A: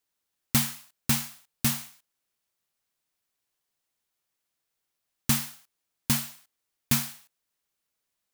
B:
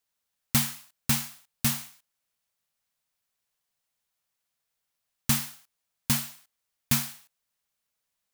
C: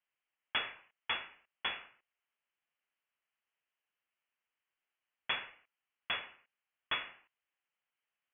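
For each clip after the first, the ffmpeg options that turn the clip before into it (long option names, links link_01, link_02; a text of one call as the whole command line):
ffmpeg -i in.wav -af "equalizer=frequency=340:width_type=o:width=0.34:gain=-12.5" out.wav
ffmpeg -i in.wav -filter_complex "[0:a]acrossover=split=280 2800:gain=0.0708 1 0.2[link_01][link_02][link_03];[link_01][link_02][link_03]amix=inputs=3:normalize=0,lowpass=frequency=3100:width_type=q:width=0.5098,lowpass=frequency=3100:width_type=q:width=0.6013,lowpass=frequency=3100:width_type=q:width=0.9,lowpass=frequency=3100:width_type=q:width=2.563,afreqshift=-3600" out.wav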